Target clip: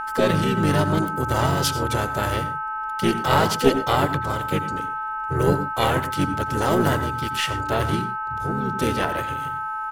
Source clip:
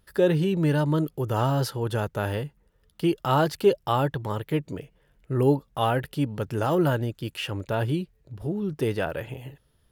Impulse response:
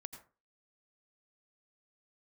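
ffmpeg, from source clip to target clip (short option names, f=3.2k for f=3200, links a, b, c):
-filter_complex "[0:a]equalizer=f=7.3k:w=0.38:g=11,aeval=exprs='val(0)+0.0398*sin(2*PI*1300*n/s)':c=same,asplit=3[a][b][c];[b]asetrate=29433,aresample=44100,atempo=1.49831,volume=-3dB[d];[c]asetrate=52444,aresample=44100,atempo=0.840896,volume=-6dB[e];[a][d][e]amix=inputs=3:normalize=0,aeval=exprs='0.708*(cos(1*acos(clip(val(0)/0.708,-1,1)))-cos(1*PI/2))+0.2*(cos(2*acos(clip(val(0)/0.708,-1,1)))-cos(2*PI/2))':c=same,asplit=2[f][g];[1:a]atrim=start_sample=2205,afade=t=out:st=0.19:d=0.01,atrim=end_sample=8820[h];[g][h]afir=irnorm=-1:irlink=0,volume=9.5dB[i];[f][i]amix=inputs=2:normalize=0,volume=-9.5dB"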